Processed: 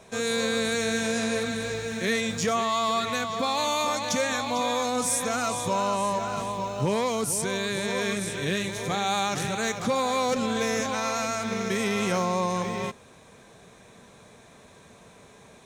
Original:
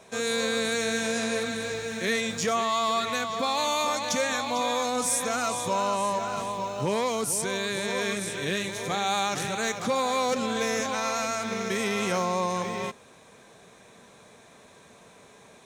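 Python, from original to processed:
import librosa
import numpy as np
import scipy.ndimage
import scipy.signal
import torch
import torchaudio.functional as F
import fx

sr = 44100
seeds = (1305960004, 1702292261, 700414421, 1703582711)

y = fx.low_shelf(x, sr, hz=140.0, db=9.5)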